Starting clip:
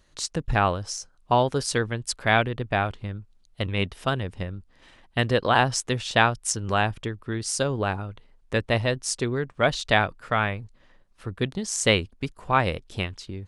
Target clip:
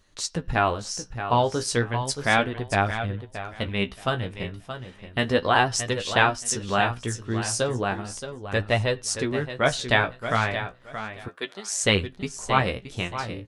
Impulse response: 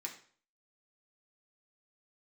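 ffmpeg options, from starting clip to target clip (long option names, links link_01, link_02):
-filter_complex "[0:a]aecho=1:1:624|1248|1872:0.316|0.0601|0.0114,asplit=2[link_01][link_02];[1:a]atrim=start_sample=2205,atrim=end_sample=3969,asetrate=33957,aresample=44100[link_03];[link_02][link_03]afir=irnorm=-1:irlink=0,volume=-16dB[link_04];[link_01][link_04]amix=inputs=2:normalize=0,flanger=delay=10:depth=7.5:regen=32:speed=0.34:shape=sinusoidal,asettb=1/sr,asplit=3[link_05][link_06][link_07];[link_05]atrim=end=11.284[link_08];[link_06]atrim=start=11.28:end=11.84,asetpts=PTS-STARTPTS,afade=type=in:duration=0.004:curve=qsin,afade=type=out:start_time=0.556:duration=0.004:curve=qsin,highpass=530[link_09];[link_07]atrim=start=11.836[link_10];[link_08][link_09]acrossfade=duration=0.004:curve1=hsin:curve2=qsin[link_11];[link_11][link_10]acrossfade=duration=0.004:curve1=qsin:curve2=hsin,volume=3dB"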